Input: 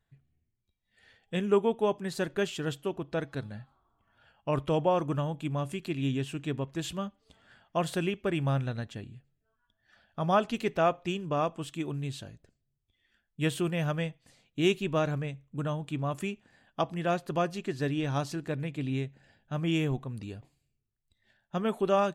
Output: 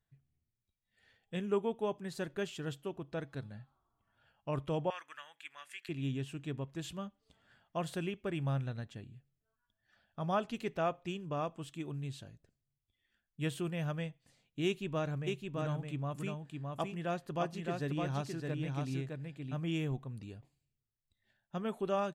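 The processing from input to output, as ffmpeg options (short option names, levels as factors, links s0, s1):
-filter_complex "[0:a]asettb=1/sr,asplit=3[s0][s1][s2];[s0]atrim=end=4.904[s3];[s1]atrim=start=4.9:end=5.89,asetpts=PTS-STARTPTS,afade=t=in:d=0.004:c=qsin,afade=t=out:st=0.986:d=0.004:c=qsin,highpass=f=1800:t=q:w=3.5[s4];[s2]atrim=start=5.886[s5];[s3][s4]acrossfade=d=0.004:c1=hsin:c2=qsin[s6];[s6][s5]acrossfade=d=0.004:c1=qsin:c2=hsin,asplit=3[s7][s8][s9];[s7]afade=t=out:st=15.26:d=0.02[s10];[s8]aecho=1:1:613:0.668,afade=t=in:st=15.26:d=0.02,afade=t=out:st=19.53:d=0.02[s11];[s9]afade=t=in:st=19.53:d=0.02[s12];[s10][s11][s12]amix=inputs=3:normalize=0,equalizer=f=130:w=1.6:g=3,volume=0.398"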